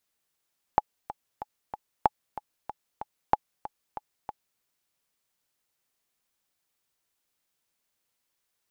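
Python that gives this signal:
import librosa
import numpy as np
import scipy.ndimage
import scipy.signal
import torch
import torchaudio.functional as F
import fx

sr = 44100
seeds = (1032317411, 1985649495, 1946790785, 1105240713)

y = fx.click_track(sr, bpm=188, beats=4, bars=3, hz=845.0, accent_db=15.5, level_db=-6.0)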